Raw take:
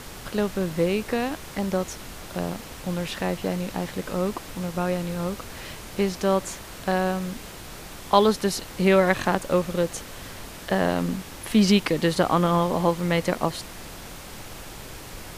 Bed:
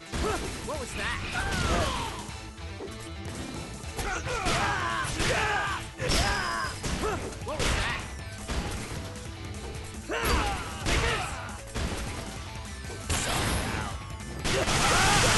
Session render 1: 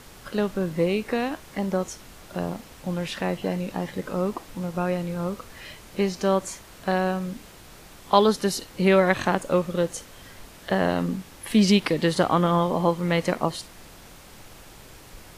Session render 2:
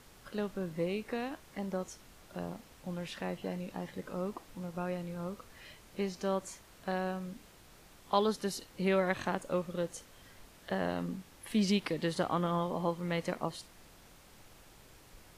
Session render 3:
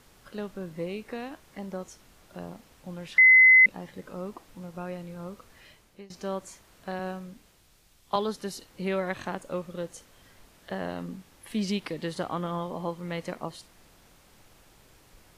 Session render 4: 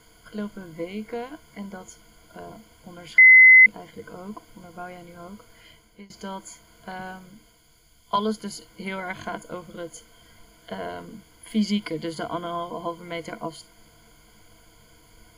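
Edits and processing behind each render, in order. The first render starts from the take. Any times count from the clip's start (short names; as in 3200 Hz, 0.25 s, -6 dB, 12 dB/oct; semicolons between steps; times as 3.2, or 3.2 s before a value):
noise print and reduce 7 dB
gain -11 dB
3.18–3.66 bleep 2040 Hz -12 dBFS; 5.44–6.1 fade out equal-power, to -21 dB; 6.99–8.16 three-band expander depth 40%
ripple EQ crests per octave 1.8, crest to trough 16 dB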